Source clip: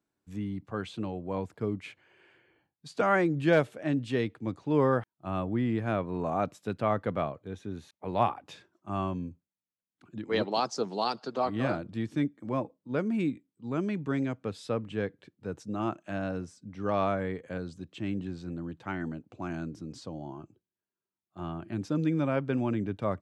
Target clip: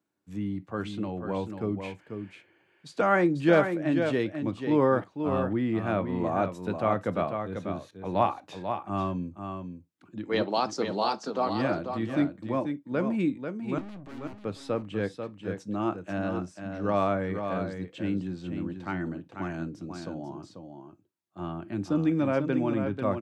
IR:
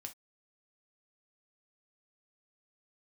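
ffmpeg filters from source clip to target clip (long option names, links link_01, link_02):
-filter_complex "[0:a]highpass=110,asettb=1/sr,asplit=3[link_01][link_02][link_03];[link_01]atrim=end=13.784[link_04];[link_02]atrim=start=13.78:end=14.39,asetpts=PTS-STARTPTS,afade=type=in:duration=0.004:curve=qsin,afade=type=out:start_time=0.606:duration=0.004:curve=qsin,aeval=exprs='(tanh(158*val(0)+0.65)-tanh(0.65))/158':channel_layout=same[link_05];[link_03]atrim=start=14.386[link_06];[link_04][link_05]acrossfade=duration=0.004:curve1=hsin:curve2=qsin[link_07];[link_07][link_06]acrossfade=duration=0.004:curve1=qsin:curve2=hsin,aecho=1:1:491:0.447,asplit=2[link_08][link_09];[1:a]atrim=start_sample=2205,asetrate=48510,aresample=44100,highshelf=frequency=4700:gain=-11[link_10];[link_09][link_10]afir=irnorm=-1:irlink=0,volume=3dB[link_11];[link_08][link_11]amix=inputs=2:normalize=0,volume=-2.5dB"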